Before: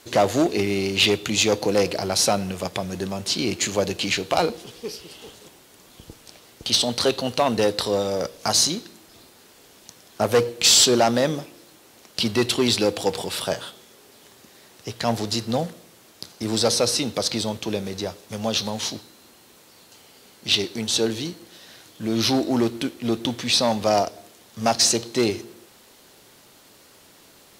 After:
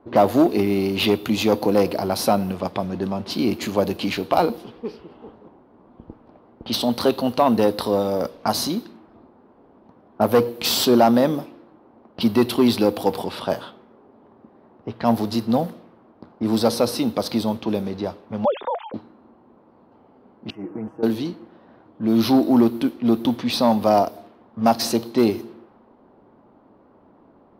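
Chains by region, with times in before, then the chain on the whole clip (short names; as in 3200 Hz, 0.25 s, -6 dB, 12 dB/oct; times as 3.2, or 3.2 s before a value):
18.45–18.94 sine-wave speech + bell 2900 Hz -9 dB 0.66 oct + notch 1500 Hz, Q 21
20.5–21.03 comb 6.3 ms, depth 70% + compressor 16:1, threshold -28 dBFS + Butterworth band-stop 3900 Hz, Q 0.64
whole clip: low-pass opened by the level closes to 870 Hz, open at -21 dBFS; EQ curve 160 Hz 0 dB, 230 Hz +8 dB, 440 Hz +1 dB, 1000 Hz +5 dB, 1800 Hz -4 dB, 4800 Hz -6 dB, 7200 Hz -15 dB, 14000 Hz +8 dB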